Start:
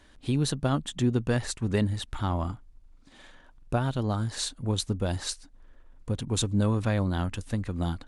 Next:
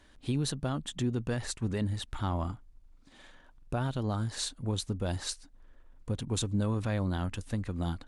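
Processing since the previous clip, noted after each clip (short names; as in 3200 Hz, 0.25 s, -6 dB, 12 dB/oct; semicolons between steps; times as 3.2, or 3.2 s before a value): limiter -19 dBFS, peak gain reduction 6 dB; gain -3 dB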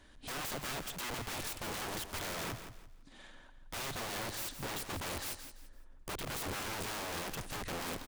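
wrapped overs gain 35 dB; on a send: feedback echo 0.169 s, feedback 28%, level -10 dB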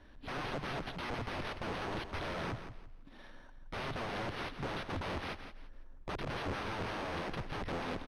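sample-and-hold 6×; tape spacing loss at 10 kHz 21 dB; gain +3.5 dB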